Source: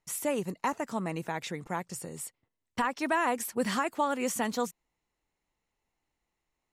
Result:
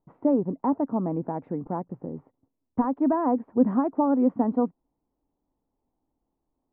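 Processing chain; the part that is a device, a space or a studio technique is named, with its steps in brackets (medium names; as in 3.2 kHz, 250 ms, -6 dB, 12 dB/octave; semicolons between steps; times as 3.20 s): under water (low-pass 930 Hz 24 dB/octave; peaking EQ 270 Hz +11 dB 0.42 oct); trim +4.5 dB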